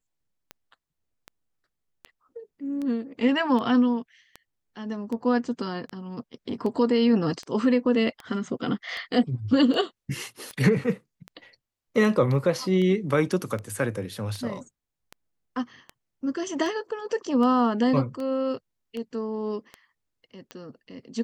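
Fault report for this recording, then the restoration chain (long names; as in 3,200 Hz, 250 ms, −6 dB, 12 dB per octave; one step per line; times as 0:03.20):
scratch tick 78 rpm −22 dBFS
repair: click removal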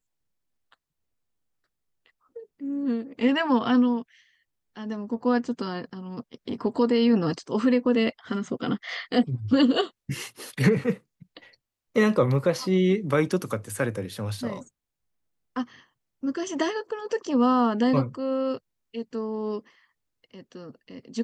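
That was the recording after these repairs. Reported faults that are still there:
none of them is left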